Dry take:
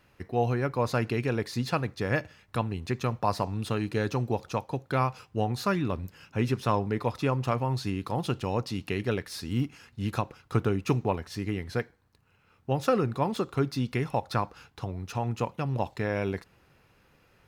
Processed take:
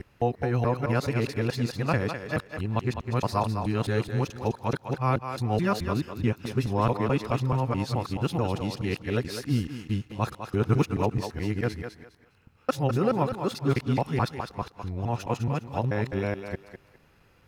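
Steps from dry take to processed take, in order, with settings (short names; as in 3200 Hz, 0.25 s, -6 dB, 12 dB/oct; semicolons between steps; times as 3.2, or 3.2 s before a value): local time reversal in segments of 0.215 s; low shelf 210 Hz +4 dB; on a send: thinning echo 0.204 s, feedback 24%, high-pass 290 Hz, level -7 dB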